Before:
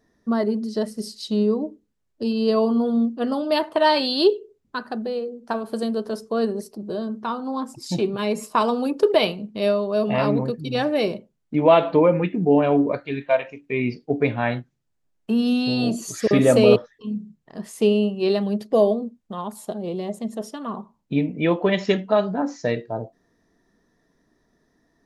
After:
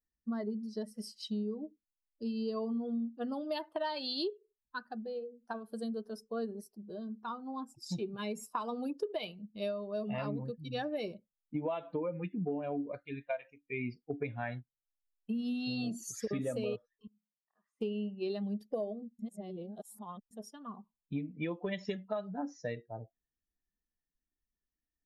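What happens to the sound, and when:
0.94–1.30 s: time-frequency box 490–3300 Hz +11 dB
17.07–17.81 s: band-pass filter 1.2 kHz, Q 3
19.19–20.31 s: reverse
whole clip: expander on every frequency bin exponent 1.5; compression 12:1, threshold -25 dBFS; trim -7 dB

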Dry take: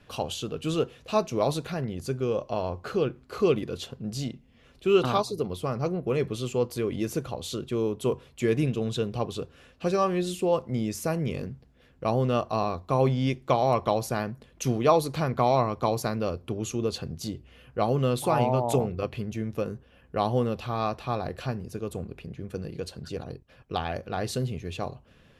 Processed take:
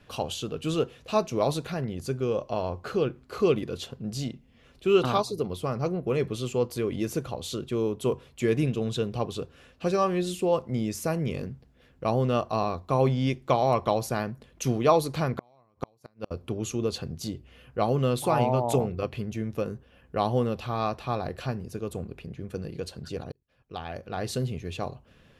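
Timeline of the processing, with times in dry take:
15.27–16.31 s: inverted gate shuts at -17 dBFS, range -38 dB
23.32–24.38 s: fade in

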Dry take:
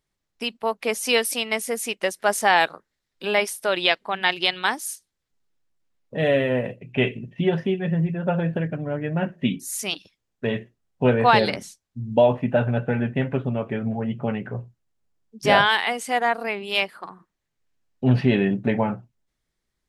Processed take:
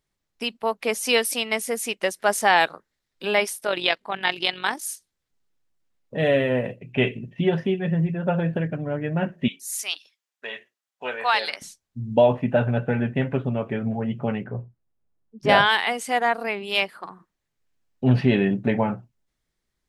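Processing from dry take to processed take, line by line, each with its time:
3.58–4.83 s: AM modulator 46 Hz, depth 35%
9.48–11.62 s: Bessel high-pass 1.2 kHz
14.44–15.49 s: low-pass 1 kHz 6 dB/octave

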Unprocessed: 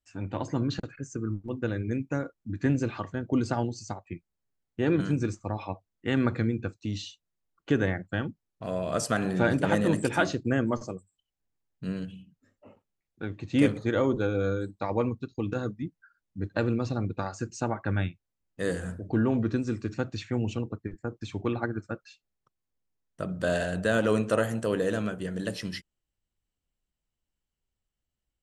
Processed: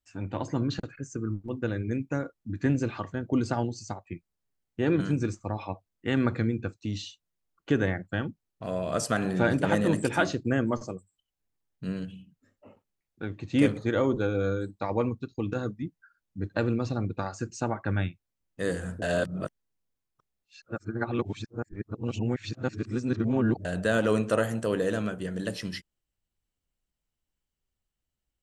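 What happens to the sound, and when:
19.02–23.65 s: reverse

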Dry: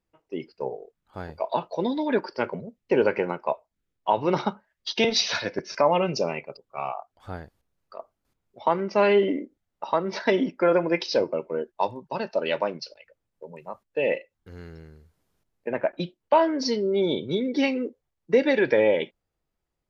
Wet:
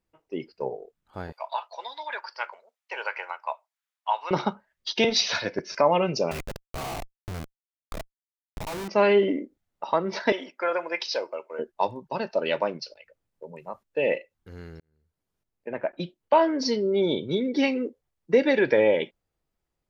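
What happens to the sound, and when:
1.32–4.31 s: high-pass 830 Hz 24 dB/octave
6.31–8.88 s: Schmitt trigger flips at -38.5 dBFS
10.32–11.59 s: high-pass 730 Hz
14.80–16.40 s: fade in

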